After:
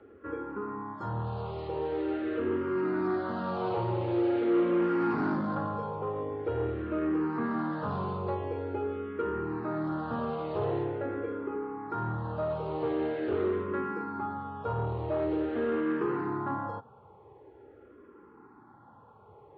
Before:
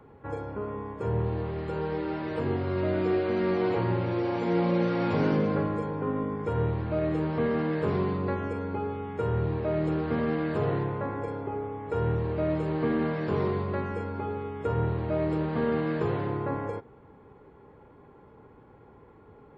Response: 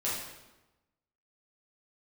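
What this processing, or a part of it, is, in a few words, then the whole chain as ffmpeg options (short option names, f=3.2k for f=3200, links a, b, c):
barber-pole phaser into a guitar amplifier: -filter_complex "[0:a]asettb=1/sr,asplit=3[a][b][c];[a]atrim=end=0.934[d];[b]atrim=start=0.93:end=1.68,asetpts=PTS-STARTPTS,afade=t=in:d=0.004:c=qsin,afade=t=out:st=0.746:d=0.004:c=qsin,aemphasis=mode=production:type=75fm[e];[c]atrim=start=1.676[f];[d][e]acrossfade=d=0.004:c1=hsin:c2=qsin[g];[g][f]acrossfade=d=0.004:c1=qsin:c2=hsin,asplit=2[h][i];[i]afreqshift=-0.45[j];[h][j]amix=inputs=2:normalize=1,asoftclip=type=tanh:threshold=-23.5dB,highpass=85,equalizer=f=160:t=q:w=4:g=-7,equalizer=f=340:t=q:w=4:g=6,equalizer=f=870:t=q:w=4:g=4,equalizer=f=1.3k:t=q:w=4:g=7,equalizer=f=2.2k:t=q:w=4:g=-5,lowpass=f=4.4k:w=0.5412,lowpass=f=4.4k:w=1.3066"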